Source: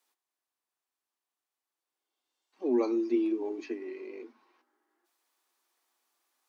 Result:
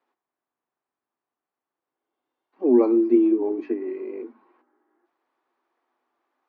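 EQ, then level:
high-pass filter 130 Hz
low-pass filter 1,600 Hz 12 dB per octave
low-shelf EQ 430 Hz +7 dB
+6.0 dB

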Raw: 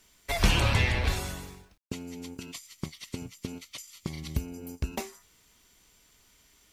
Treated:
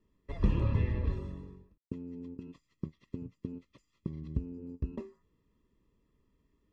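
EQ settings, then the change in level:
moving average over 59 samples
high-frequency loss of the air 60 metres
low-shelf EQ 170 Hz −6 dB
+2.0 dB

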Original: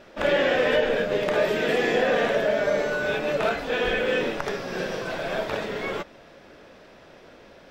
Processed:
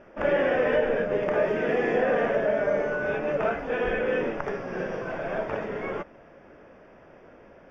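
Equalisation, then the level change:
moving average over 11 samples
−1.0 dB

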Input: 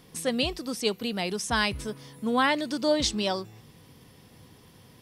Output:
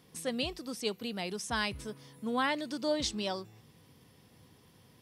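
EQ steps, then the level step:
high-pass filter 51 Hz
−7.0 dB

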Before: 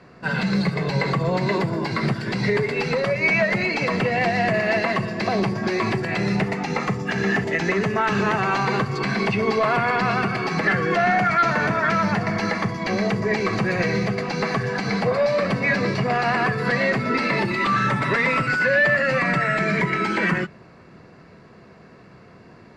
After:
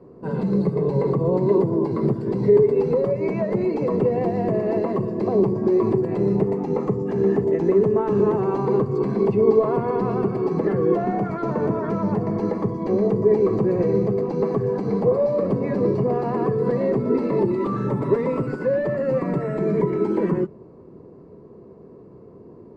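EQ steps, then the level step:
drawn EQ curve 190 Hz 0 dB, 420 Hz +9 dB, 720 Hz −7 dB, 1,000 Hz −3 dB, 1,500 Hz −20 dB, 2,500 Hz −23 dB, 5,600 Hz −21 dB, 9,000 Hz −14 dB
0.0 dB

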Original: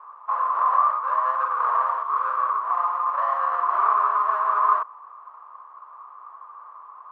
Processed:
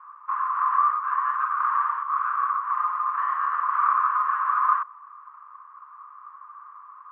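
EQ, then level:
inverse Chebyshev high-pass filter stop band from 630 Hz, stop band 40 dB
high-frequency loss of the air 430 metres
high-shelf EQ 2,000 Hz −7 dB
+8.5 dB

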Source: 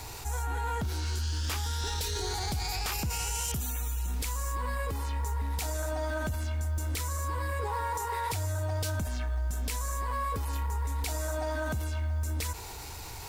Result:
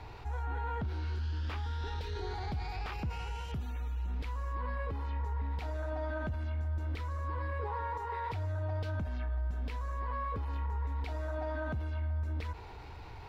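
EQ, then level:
high-frequency loss of the air 350 metres
−3.0 dB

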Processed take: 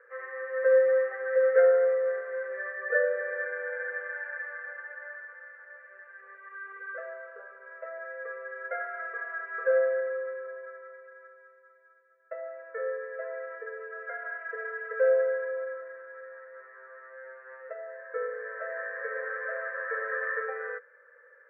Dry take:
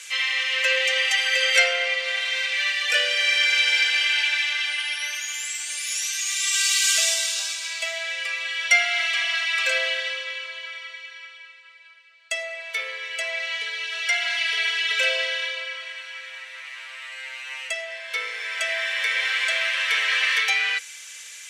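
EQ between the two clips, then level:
Chebyshev low-pass with heavy ripple 1,800 Hz, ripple 6 dB
low shelf with overshoot 620 Hz +6.5 dB, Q 3
0.0 dB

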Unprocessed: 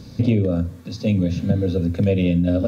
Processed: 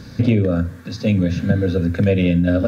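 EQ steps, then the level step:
parametric band 1,600 Hz +12.5 dB 0.67 octaves
+2.0 dB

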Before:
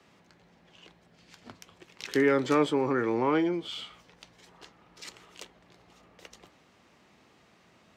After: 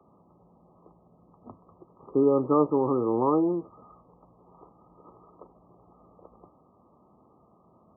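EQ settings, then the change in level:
linear-phase brick-wall low-pass 1,300 Hz
+2.5 dB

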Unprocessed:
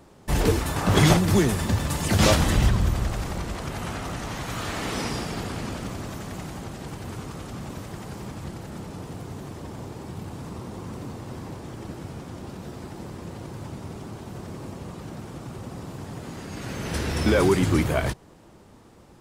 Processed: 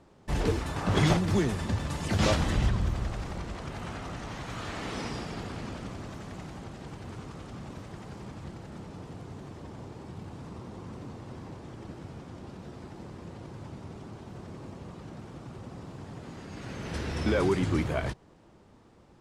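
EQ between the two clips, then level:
high-frequency loss of the air 58 metres
−6.0 dB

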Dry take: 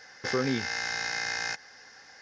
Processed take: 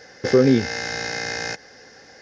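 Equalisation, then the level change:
low shelf with overshoot 700 Hz +8.5 dB, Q 1.5
+4.0 dB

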